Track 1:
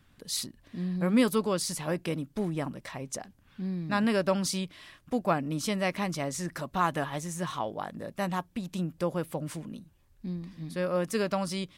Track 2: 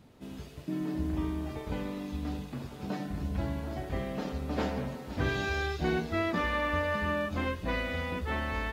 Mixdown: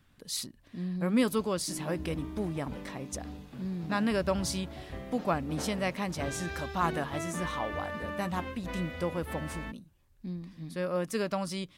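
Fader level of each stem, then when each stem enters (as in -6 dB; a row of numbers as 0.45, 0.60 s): -2.5, -7.5 dB; 0.00, 1.00 s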